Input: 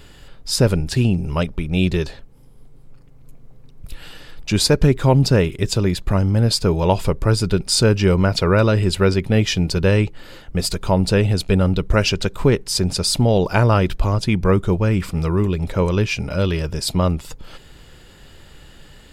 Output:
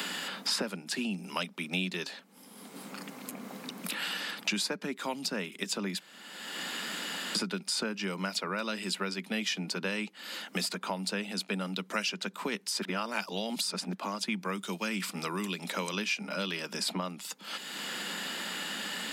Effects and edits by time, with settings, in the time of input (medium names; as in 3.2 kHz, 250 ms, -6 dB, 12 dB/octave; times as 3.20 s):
6.00–7.35 s: room tone
12.82–13.93 s: reverse
whole clip: steep high-pass 190 Hz 72 dB/octave; peaking EQ 400 Hz -12.5 dB 1.6 oct; three bands compressed up and down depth 100%; trim -8 dB